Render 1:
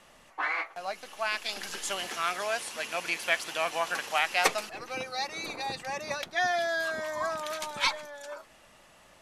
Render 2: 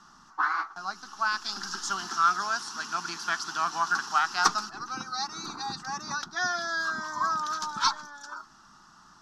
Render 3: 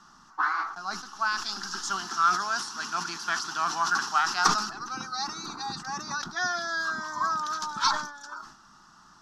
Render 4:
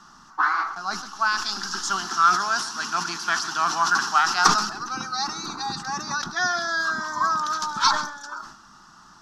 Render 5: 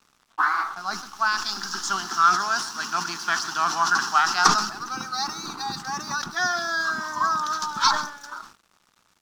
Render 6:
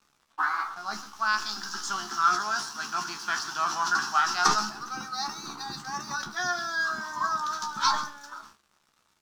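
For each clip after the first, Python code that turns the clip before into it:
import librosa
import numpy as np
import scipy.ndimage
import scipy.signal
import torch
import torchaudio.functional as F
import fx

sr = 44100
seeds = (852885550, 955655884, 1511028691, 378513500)

y1 = fx.curve_eq(x, sr, hz=(110.0, 190.0, 380.0, 540.0, 850.0, 1400.0, 2200.0, 5500.0, 9400.0), db=(0, 8, 0, -20, 4, 13, -15, 11, -11))
y1 = y1 * librosa.db_to_amplitude(-2.0)
y2 = fx.sustainer(y1, sr, db_per_s=91.0)
y3 = y2 + 10.0 ** (-17.0 / 20.0) * np.pad(y2, (int(133 * sr / 1000.0), 0))[:len(y2)]
y3 = y3 * librosa.db_to_amplitude(5.0)
y4 = np.sign(y3) * np.maximum(np.abs(y3) - 10.0 ** (-46.5 / 20.0), 0.0)
y5 = fx.comb_fb(y4, sr, f0_hz=71.0, decay_s=0.16, harmonics='all', damping=0.0, mix_pct=90)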